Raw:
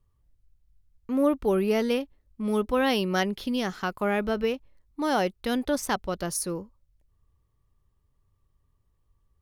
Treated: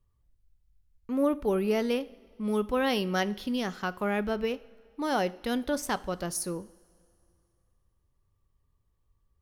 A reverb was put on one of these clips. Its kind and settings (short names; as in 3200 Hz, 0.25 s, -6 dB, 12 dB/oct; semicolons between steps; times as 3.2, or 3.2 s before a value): two-slope reverb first 0.54 s, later 2.7 s, from -16 dB, DRR 15 dB; gain -3 dB